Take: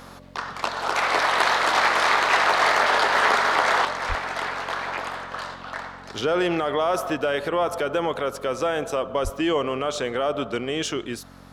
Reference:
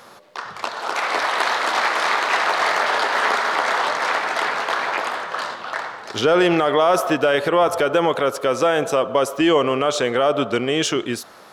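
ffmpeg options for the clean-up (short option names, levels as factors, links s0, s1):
-filter_complex "[0:a]bandreject=f=45.5:t=h:w=4,bandreject=f=91:t=h:w=4,bandreject=f=136.5:t=h:w=4,bandreject=f=182:t=h:w=4,bandreject=f=227.5:t=h:w=4,bandreject=f=273:t=h:w=4,asplit=3[s0][s1][s2];[s0]afade=t=out:st=4.08:d=0.02[s3];[s1]highpass=f=140:w=0.5412,highpass=f=140:w=1.3066,afade=t=in:st=4.08:d=0.02,afade=t=out:st=4.2:d=0.02[s4];[s2]afade=t=in:st=4.2:d=0.02[s5];[s3][s4][s5]amix=inputs=3:normalize=0,asplit=3[s6][s7][s8];[s6]afade=t=out:st=9.23:d=0.02[s9];[s7]highpass=f=140:w=0.5412,highpass=f=140:w=1.3066,afade=t=in:st=9.23:d=0.02,afade=t=out:st=9.35:d=0.02[s10];[s8]afade=t=in:st=9.35:d=0.02[s11];[s9][s10][s11]amix=inputs=3:normalize=0,asetnsamples=n=441:p=0,asendcmd='3.85 volume volume 6.5dB',volume=1"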